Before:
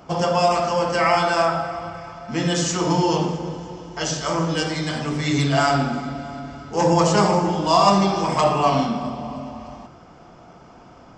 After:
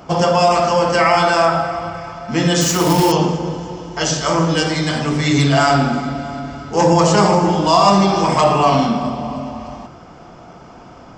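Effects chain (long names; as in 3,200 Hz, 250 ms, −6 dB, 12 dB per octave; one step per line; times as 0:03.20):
in parallel at +2.5 dB: brickwall limiter −12 dBFS, peak gain reduction 7.5 dB
0:02.61–0:03.12: on the sum: log-companded quantiser 4 bits
level −1 dB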